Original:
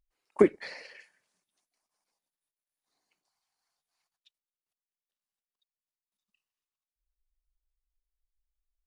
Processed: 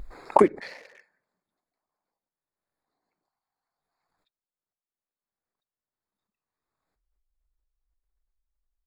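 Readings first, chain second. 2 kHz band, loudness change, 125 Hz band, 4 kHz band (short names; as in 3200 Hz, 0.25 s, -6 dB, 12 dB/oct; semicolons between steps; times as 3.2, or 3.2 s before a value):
+2.0 dB, +3.0 dB, +2.0 dB, 0.0 dB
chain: Wiener smoothing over 15 samples; backwards sustainer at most 25 dB/s; gain +1.5 dB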